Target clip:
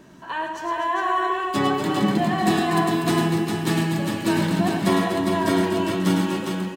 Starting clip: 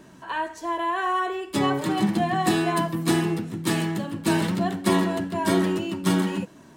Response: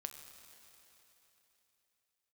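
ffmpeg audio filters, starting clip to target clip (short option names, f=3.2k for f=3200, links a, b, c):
-filter_complex "[0:a]equalizer=f=9.7k:t=o:w=0.69:g=-4.5,aecho=1:1:105|244|405:0.501|0.398|0.562,asplit=2[a][b];[1:a]atrim=start_sample=2205[c];[b][c]afir=irnorm=-1:irlink=0,volume=0dB[d];[a][d]amix=inputs=2:normalize=0,volume=-4dB"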